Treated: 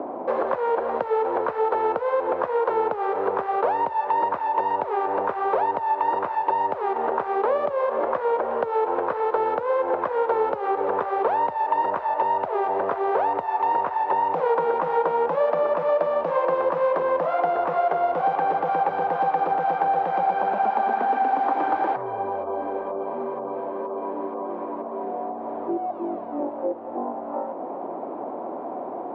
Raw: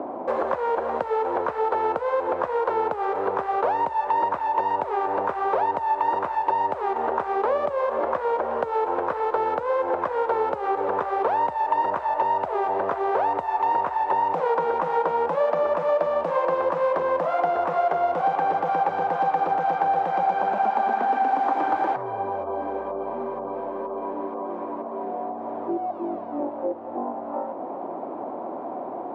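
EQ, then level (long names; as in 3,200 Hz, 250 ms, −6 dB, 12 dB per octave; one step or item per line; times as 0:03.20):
band-pass filter 100–4,300 Hz
parametric band 450 Hz +2.5 dB 0.4 octaves
0.0 dB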